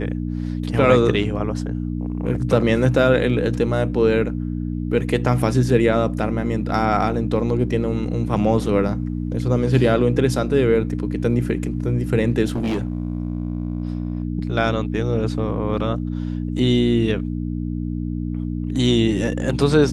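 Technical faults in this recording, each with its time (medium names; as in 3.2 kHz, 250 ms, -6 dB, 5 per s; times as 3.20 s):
hum 60 Hz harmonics 5 -25 dBFS
12.45–14.23 s: clipped -18.5 dBFS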